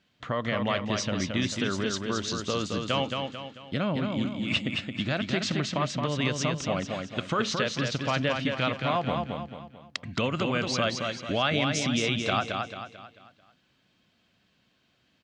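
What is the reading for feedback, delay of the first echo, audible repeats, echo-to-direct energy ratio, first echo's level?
42%, 221 ms, 5, -3.5 dB, -4.5 dB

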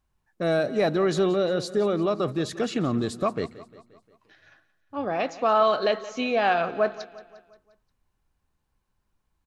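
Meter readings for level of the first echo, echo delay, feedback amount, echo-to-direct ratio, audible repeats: -17.0 dB, 176 ms, 53%, -15.5 dB, 4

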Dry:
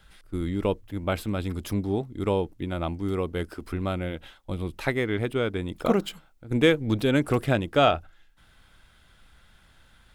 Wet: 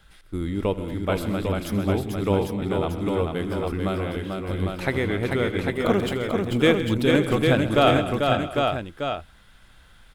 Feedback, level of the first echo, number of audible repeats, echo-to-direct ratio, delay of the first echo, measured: no regular repeats, -18.5 dB, 9, 0.0 dB, 79 ms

